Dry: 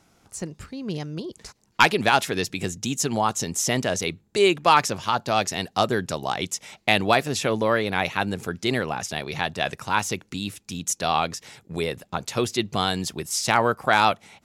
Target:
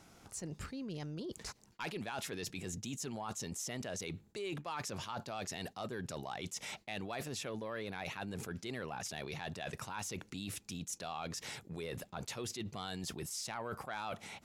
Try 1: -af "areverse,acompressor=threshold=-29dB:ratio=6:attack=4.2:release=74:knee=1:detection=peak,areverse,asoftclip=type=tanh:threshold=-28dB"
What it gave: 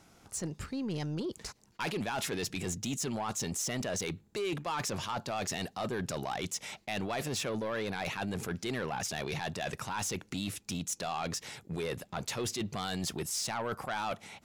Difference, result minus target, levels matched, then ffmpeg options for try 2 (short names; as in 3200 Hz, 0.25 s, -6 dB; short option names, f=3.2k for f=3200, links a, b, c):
compressor: peak gain reduction -9 dB
-af "areverse,acompressor=threshold=-40dB:ratio=6:attack=4.2:release=74:knee=1:detection=peak,areverse,asoftclip=type=tanh:threshold=-28dB"